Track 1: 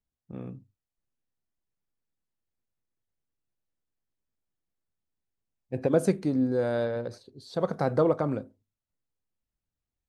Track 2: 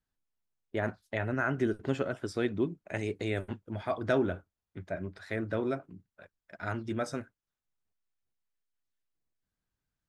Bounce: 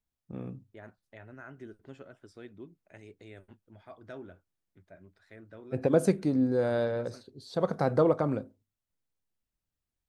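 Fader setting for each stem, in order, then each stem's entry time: -0.5, -17.0 dB; 0.00, 0.00 s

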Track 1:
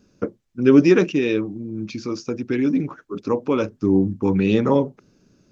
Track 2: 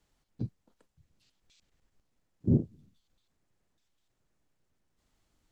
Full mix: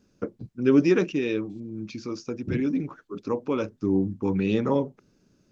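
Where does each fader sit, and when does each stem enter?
-6.0, -5.0 dB; 0.00, 0.00 s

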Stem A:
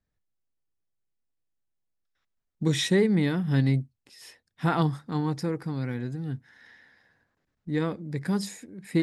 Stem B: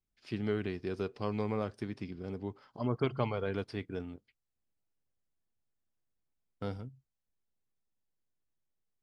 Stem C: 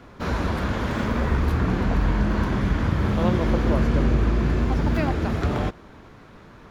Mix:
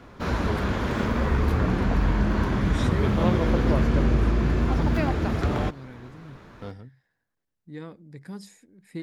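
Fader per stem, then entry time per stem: -11.5, -0.5, -1.0 dB; 0.00, 0.00, 0.00 s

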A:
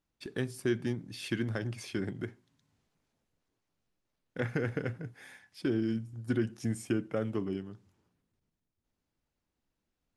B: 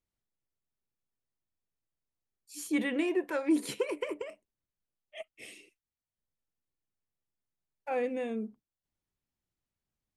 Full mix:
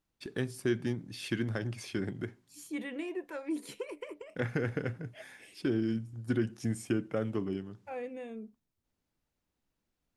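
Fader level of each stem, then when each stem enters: 0.0, -8.0 dB; 0.00, 0.00 s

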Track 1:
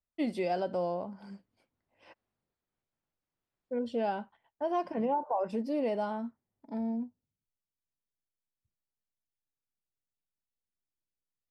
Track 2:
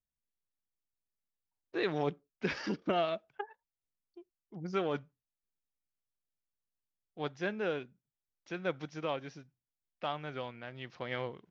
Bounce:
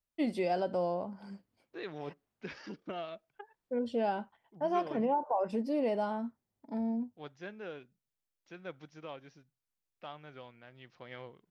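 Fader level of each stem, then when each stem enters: 0.0, -9.5 dB; 0.00, 0.00 s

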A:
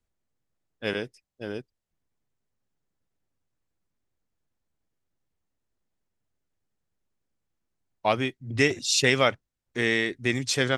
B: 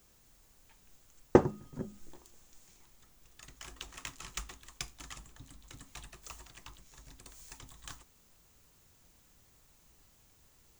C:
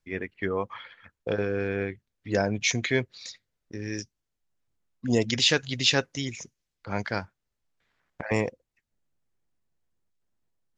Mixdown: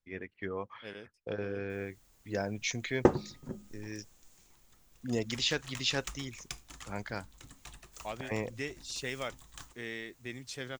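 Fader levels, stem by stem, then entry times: -16.5, -1.5, -9.0 dB; 0.00, 1.70, 0.00 s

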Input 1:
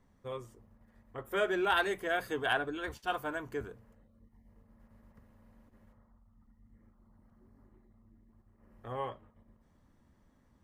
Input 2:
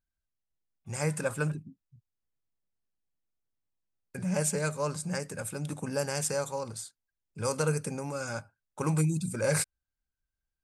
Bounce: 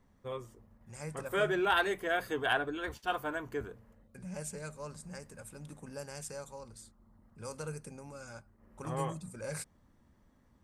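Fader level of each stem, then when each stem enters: +0.5, -12.5 dB; 0.00, 0.00 s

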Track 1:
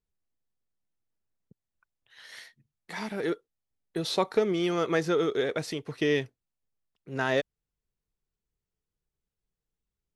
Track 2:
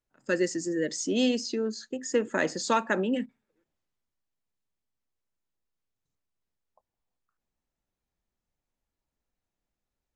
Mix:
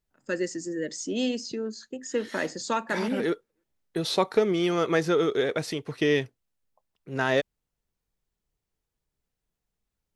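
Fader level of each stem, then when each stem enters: +2.5, -2.5 dB; 0.00, 0.00 s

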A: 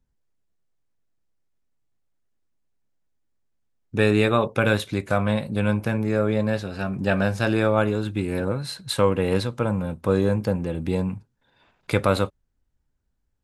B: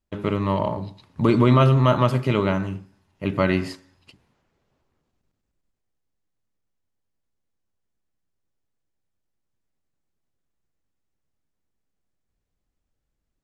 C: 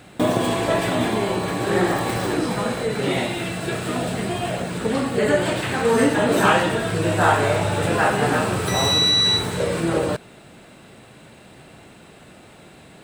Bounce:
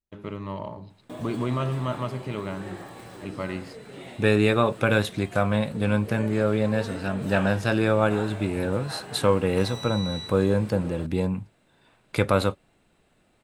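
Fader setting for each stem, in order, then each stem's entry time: -1.0, -11.0, -19.5 dB; 0.25, 0.00, 0.90 s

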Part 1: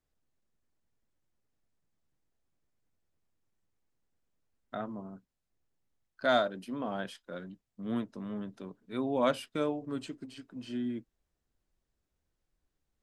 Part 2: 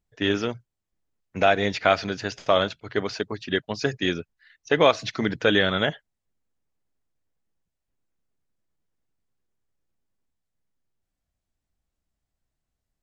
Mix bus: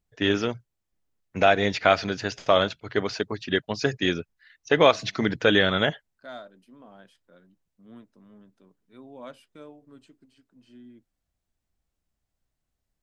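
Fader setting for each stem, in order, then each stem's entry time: -14.0, +0.5 dB; 0.00, 0.00 s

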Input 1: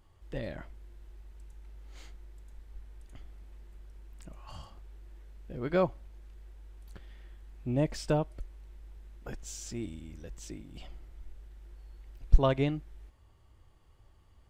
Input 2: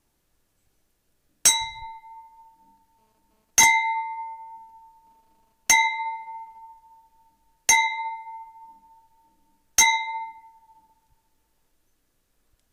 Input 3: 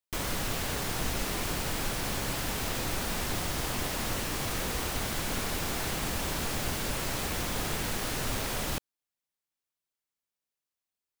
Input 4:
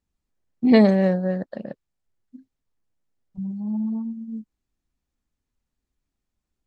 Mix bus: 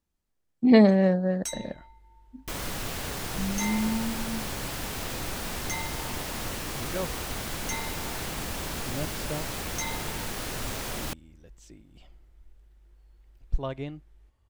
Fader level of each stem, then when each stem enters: -7.0, -18.0, -1.5, -2.0 dB; 1.20, 0.00, 2.35, 0.00 s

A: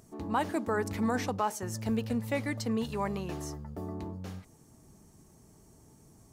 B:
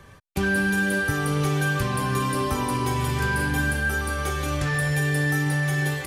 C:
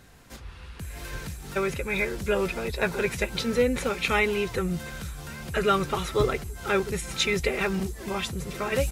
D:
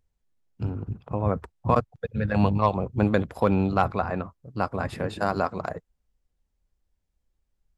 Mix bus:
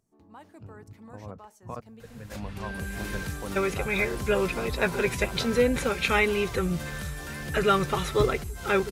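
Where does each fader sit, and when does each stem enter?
-19.0, -16.0, +0.5, -17.0 dB; 0.00, 2.20, 2.00, 0.00 s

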